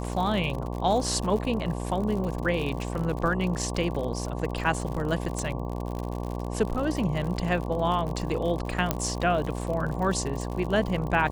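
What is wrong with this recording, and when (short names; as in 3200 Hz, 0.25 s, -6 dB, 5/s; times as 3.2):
buzz 60 Hz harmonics 19 -32 dBFS
crackle 75/s -32 dBFS
5.39 pop
8.91 pop -8 dBFS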